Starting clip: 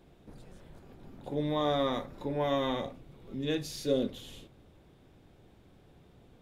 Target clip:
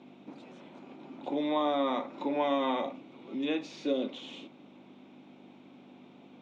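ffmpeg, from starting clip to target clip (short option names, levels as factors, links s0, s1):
-filter_complex "[0:a]acrossover=split=410|2200[s0][s1][s2];[s0]acompressor=threshold=0.00708:ratio=4[s3];[s1]acompressor=threshold=0.02:ratio=4[s4];[s2]acompressor=threshold=0.00282:ratio=4[s5];[s3][s4][s5]amix=inputs=3:normalize=0,aeval=exprs='val(0)+0.00355*(sin(2*PI*50*n/s)+sin(2*PI*2*50*n/s)/2+sin(2*PI*3*50*n/s)/3+sin(2*PI*4*50*n/s)/4+sin(2*PI*5*50*n/s)/5)':c=same,highpass=f=230:w=0.5412,highpass=f=230:w=1.3066,equalizer=f=280:t=q:w=4:g=5,equalizer=f=450:t=q:w=4:g=-6,equalizer=f=910:t=q:w=4:g=3,equalizer=f=1700:t=q:w=4:g=-8,equalizer=f=2400:t=q:w=4:g=6,equalizer=f=4800:t=q:w=4:g=-8,lowpass=f=5500:w=0.5412,lowpass=f=5500:w=1.3066,volume=2.11"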